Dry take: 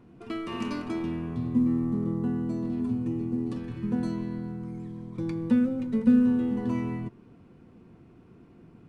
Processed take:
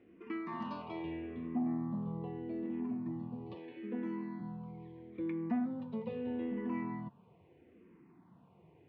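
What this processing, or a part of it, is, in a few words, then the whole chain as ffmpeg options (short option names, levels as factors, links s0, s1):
barber-pole phaser into a guitar amplifier: -filter_complex "[0:a]asettb=1/sr,asplit=3[s0][s1][s2];[s0]atrim=end=3.544[s3];[s1]atrim=start=3.54:end=4.4,asetpts=PTS-STARTPTS,afade=t=in:d=0.004:c=qsin,afade=t=out:st=0.856:d=0.004:c=qsin,highpass=f=200:w=0.5412,highpass=f=200:w=1.3066[s4];[s2]atrim=start=4.396[s5];[s3][s4]acrossfade=d=0.004:c1=hsin:c2=qsin[s6];[s6][s5]acrossfade=d=0.004:c1=qsin:c2=hsin,asplit=2[s7][s8];[s8]afreqshift=-0.78[s9];[s7][s9]amix=inputs=2:normalize=1,asoftclip=type=tanh:threshold=0.1,highpass=110,equalizer=f=120:t=q:w=4:g=-7,equalizer=f=240:t=q:w=4:g=-5,equalizer=f=930:t=q:w=4:g=5,equalizer=f=1400:t=q:w=4:g=-7,equalizer=f=2000:t=q:w=4:g=4,lowpass=f=3400:w=0.5412,lowpass=f=3400:w=1.3066,volume=0.708"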